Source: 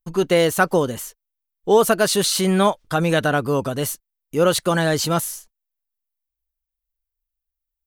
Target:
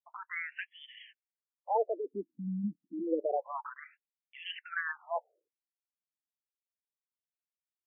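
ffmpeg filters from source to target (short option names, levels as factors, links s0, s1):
-filter_complex "[0:a]asplit=3[s0][s1][s2];[s0]afade=t=out:st=0.99:d=0.02[s3];[s1]tiltshelf=f=750:g=-9,afade=t=in:st=0.99:d=0.02,afade=t=out:st=2.63:d=0.02[s4];[s2]afade=t=in:st=2.63:d=0.02[s5];[s3][s4][s5]amix=inputs=3:normalize=0,afftfilt=real='re*between(b*sr/1024,210*pow(2500/210,0.5+0.5*sin(2*PI*0.29*pts/sr))/1.41,210*pow(2500/210,0.5+0.5*sin(2*PI*0.29*pts/sr))*1.41)':imag='im*between(b*sr/1024,210*pow(2500/210,0.5+0.5*sin(2*PI*0.29*pts/sr))/1.41,210*pow(2500/210,0.5+0.5*sin(2*PI*0.29*pts/sr))*1.41)':win_size=1024:overlap=0.75,volume=0.398"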